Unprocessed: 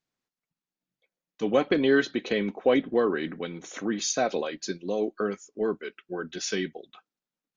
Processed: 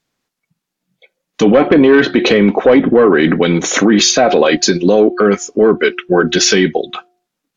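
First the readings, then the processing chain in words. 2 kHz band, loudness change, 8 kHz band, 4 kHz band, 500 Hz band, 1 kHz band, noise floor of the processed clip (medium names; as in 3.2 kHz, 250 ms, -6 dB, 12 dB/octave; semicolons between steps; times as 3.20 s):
+16.0 dB, +16.5 dB, no reading, +19.0 dB, +16.0 dB, +16.0 dB, -78 dBFS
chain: de-hum 358.1 Hz, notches 2; low-pass that closes with the level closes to 2.1 kHz, closed at -21.5 dBFS; spectral noise reduction 11 dB; in parallel at -7.5 dB: sine folder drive 6 dB, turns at -10 dBFS; on the sum: loudness maximiser +19.5 dB; trim -1 dB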